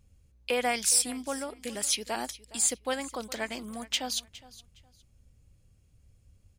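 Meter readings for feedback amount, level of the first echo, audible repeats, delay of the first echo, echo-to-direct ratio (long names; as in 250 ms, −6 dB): 23%, −19.0 dB, 2, 413 ms, −19.0 dB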